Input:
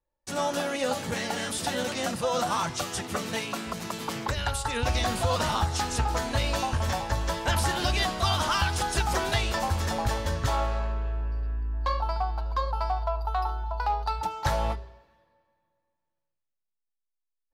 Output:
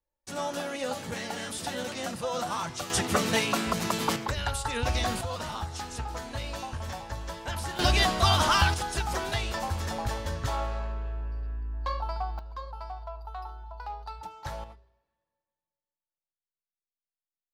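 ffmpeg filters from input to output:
-af "asetnsamples=n=441:p=0,asendcmd='2.9 volume volume 5.5dB;4.16 volume volume -1.5dB;5.21 volume volume -8.5dB;7.79 volume volume 3dB;8.74 volume volume -4dB;12.39 volume volume -11dB;14.64 volume volume -19.5dB',volume=-4.5dB"

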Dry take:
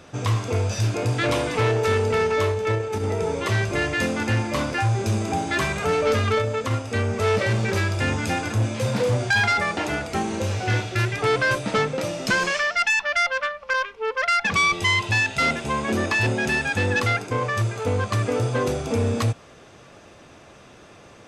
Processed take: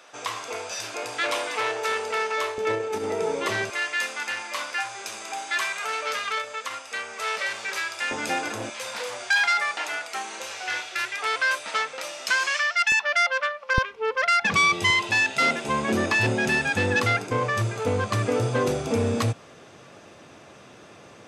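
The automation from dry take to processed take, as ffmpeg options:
-af "asetnsamples=n=441:p=0,asendcmd='2.58 highpass f 290;3.7 highpass f 1100;8.11 highpass f 370;8.7 highpass f 1000;12.92 highpass f 400;13.78 highpass f 110;14.9 highpass f 240;15.69 highpass f 110',highpass=710"

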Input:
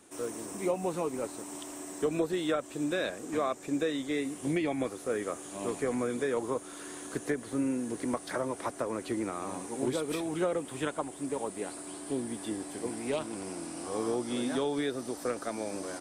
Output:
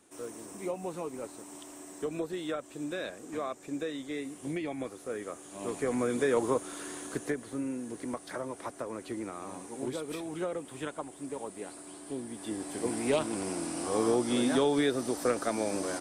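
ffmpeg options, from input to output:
-af "volume=13.5dB,afade=t=in:st=5.48:d=0.95:silence=0.334965,afade=t=out:st=6.43:d=1.17:silence=0.354813,afade=t=in:st=12.33:d=0.66:silence=0.354813"

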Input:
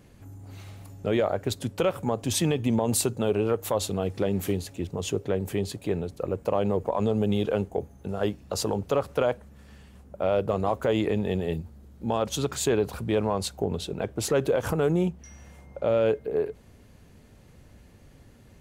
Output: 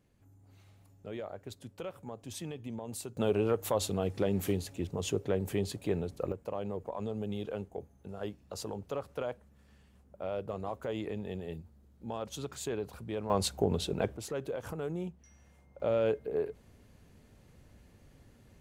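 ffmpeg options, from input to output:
-af "asetnsamples=n=441:p=0,asendcmd='3.17 volume volume -4dB;6.32 volume volume -12dB;13.3 volume volume -1dB;14.17 volume volume -13dB;15.8 volume volume -6dB',volume=-16.5dB"

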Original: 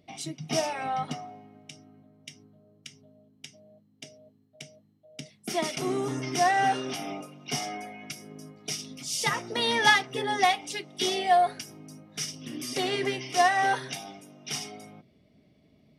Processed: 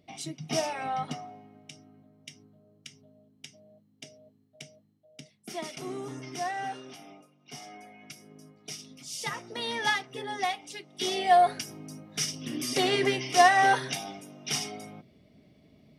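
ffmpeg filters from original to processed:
-af "volume=18.5dB,afade=t=out:st=4.62:d=0.72:silence=0.473151,afade=t=out:st=6.14:d=1.23:silence=0.354813,afade=t=in:st=7.37:d=0.72:silence=0.316228,afade=t=in:st=10.88:d=0.65:silence=0.316228"

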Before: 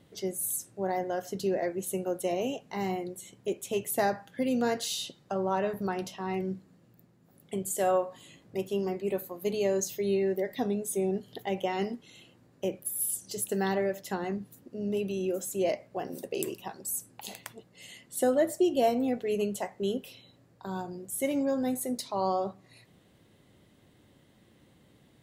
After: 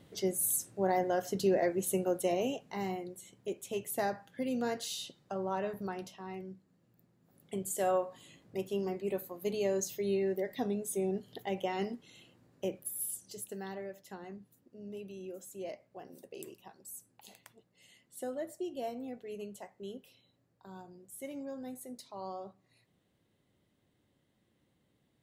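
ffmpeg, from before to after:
-af "volume=10.5dB,afade=t=out:st=1.93:d=1.08:silence=0.446684,afade=t=out:st=5.74:d=0.82:silence=0.421697,afade=t=in:st=6.56:d=1:silence=0.334965,afade=t=out:st=12.66:d=0.96:silence=0.334965"

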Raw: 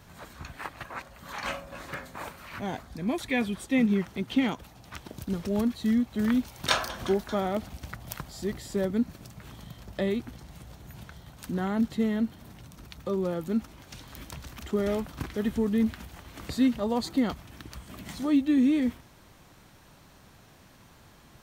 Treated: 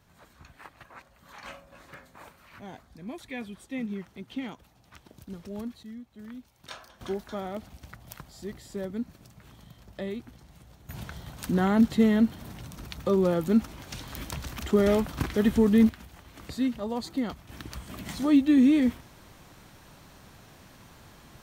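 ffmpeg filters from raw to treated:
-af "asetnsamples=n=441:p=0,asendcmd='5.83 volume volume -18dB;7.01 volume volume -6.5dB;10.89 volume volume 5.5dB;15.89 volume volume -4dB;17.49 volume volume 3dB',volume=-10dB"

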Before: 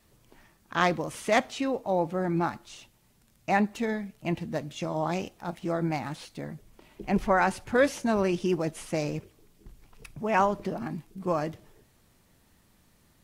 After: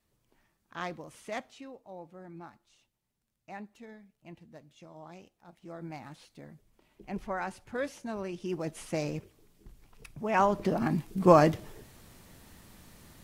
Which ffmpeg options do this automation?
-af "volume=15.5dB,afade=t=out:st=1.26:d=0.52:silence=0.473151,afade=t=in:st=5.49:d=0.54:silence=0.398107,afade=t=in:st=8.37:d=0.46:silence=0.375837,afade=t=in:st=10.35:d=0.9:silence=0.251189"

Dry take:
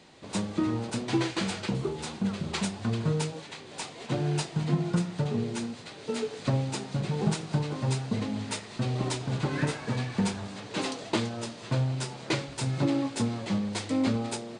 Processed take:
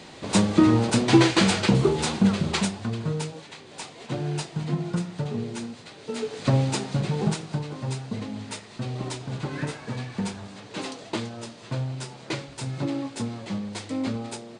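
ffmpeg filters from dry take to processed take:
-af "volume=18dB,afade=t=out:st=2.15:d=0.75:silence=0.281838,afade=t=in:st=6.13:d=0.51:silence=0.421697,afade=t=out:st=6.64:d=0.97:silence=0.354813"

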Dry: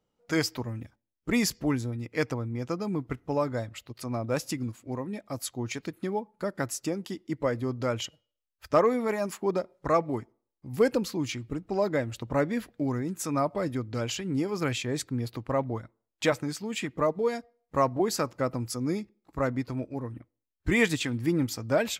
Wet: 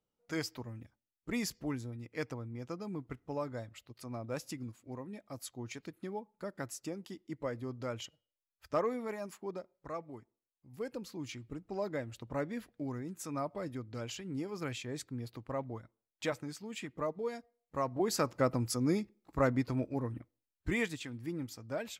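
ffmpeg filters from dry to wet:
-af "volume=6dB,afade=t=out:st=8.91:d=1.01:silence=0.446684,afade=t=in:st=10.87:d=0.5:silence=0.446684,afade=t=in:st=17.84:d=0.52:silence=0.354813,afade=t=out:st=20.15:d=0.76:silence=0.251189"

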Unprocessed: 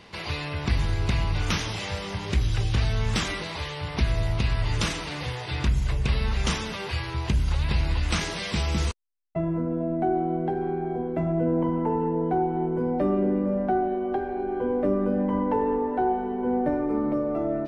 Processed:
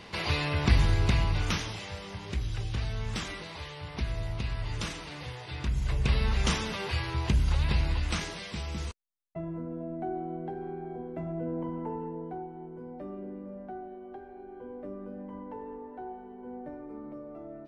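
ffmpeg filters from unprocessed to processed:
-af "volume=9dB,afade=t=out:st=0.75:d=1.1:silence=0.298538,afade=t=in:st=5.63:d=0.44:silence=0.446684,afade=t=out:st=7.62:d=0.88:silence=0.375837,afade=t=out:st=11.86:d=0.68:silence=0.446684"

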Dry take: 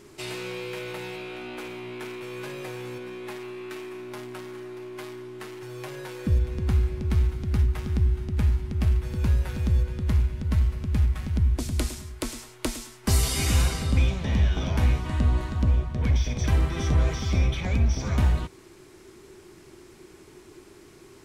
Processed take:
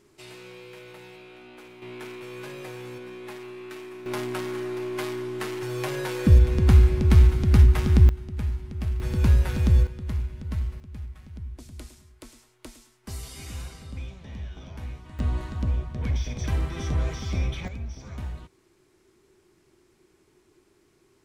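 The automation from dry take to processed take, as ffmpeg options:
-af "asetnsamples=n=441:p=0,asendcmd='1.82 volume volume -2.5dB;4.06 volume volume 7.5dB;8.09 volume volume -5.5dB;9 volume volume 4dB;9.87 volume volume -6dB;10.8 volume volume -15dB;15.19 volume volume -4dB;17.68 volume volume -13dB',volume=-10dB"

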